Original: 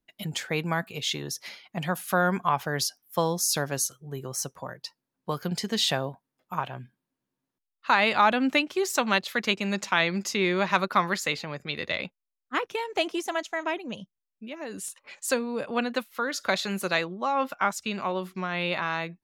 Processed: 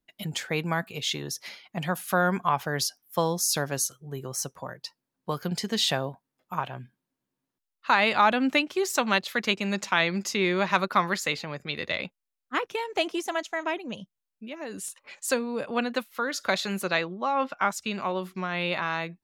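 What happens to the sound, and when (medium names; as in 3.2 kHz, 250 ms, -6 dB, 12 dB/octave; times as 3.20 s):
16.83–17.57 s: low-pass 5.4 kHz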